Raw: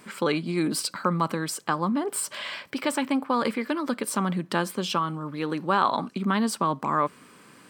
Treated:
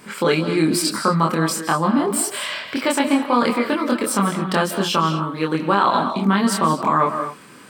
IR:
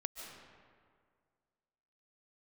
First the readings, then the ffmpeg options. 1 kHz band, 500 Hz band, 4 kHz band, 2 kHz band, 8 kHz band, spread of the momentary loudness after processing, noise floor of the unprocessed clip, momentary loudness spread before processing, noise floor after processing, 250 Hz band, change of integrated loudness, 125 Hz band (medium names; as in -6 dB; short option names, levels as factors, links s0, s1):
+7.0 dB, +8.0 dB, +8.0 dB, +7.5 dB, +7.5 dB, 5 LU, -53 dBFS, 6 LU, -43 dBFS, +7.5 dB, +7.5 dB, +7.5 dB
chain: -filter_complex "[0:a]asplit=2[s0][s1];[1:a]atrim=start_sample=2205,afade=t=out:st=0.3:d=0.01,atrim=end_sample=13671,adelay=25[s2];[s1][s2]afir=irnorm=-1:irlink=0,volume=1.19[s3];[s0][s3]amix=inputs=2:normalize=0,alimiter=level_in=2.82:limit=0.891:release=50:level=0:latency=1,volume=0.631"